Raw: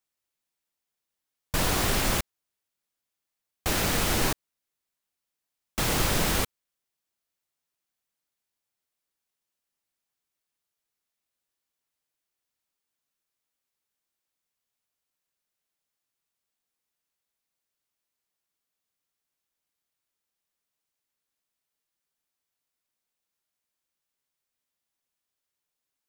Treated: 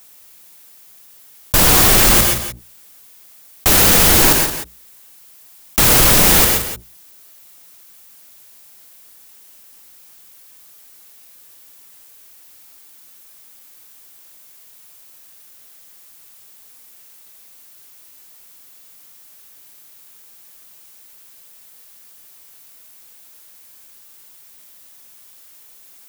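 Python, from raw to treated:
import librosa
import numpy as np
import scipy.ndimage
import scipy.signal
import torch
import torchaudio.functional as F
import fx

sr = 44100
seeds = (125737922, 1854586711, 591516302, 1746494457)

p1 = fx.high_shelf(x, sr, hz=8900.0, db=11.0)
p2 = fx.hum_notches(p1, sr, base_hz=60, count=3)
p3 = fx.leveller(p2, sr, passes=3)
p4 = p3 + fx.echo_single(p3, sr, ms=172, db=-20.5, dry=0)
p5 = fx.rev_gated(p4, sr, seeds[0], gate_ms=150, shape='rising', drr_db=5.5)
p6 = fx.env_flatten(p5, sr, amount_pct=50)
y = p6 * 10.0 ** (2.0 / 20.0)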